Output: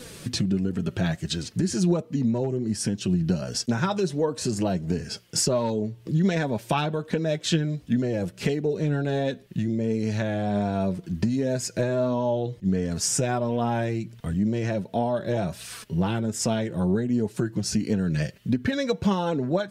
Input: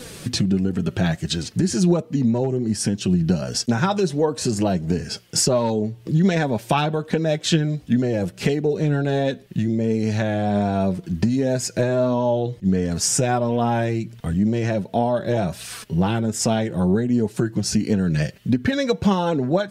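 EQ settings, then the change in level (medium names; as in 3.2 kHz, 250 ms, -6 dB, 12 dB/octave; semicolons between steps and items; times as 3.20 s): band-stop 770 Hz, Q 15; -4.5 dB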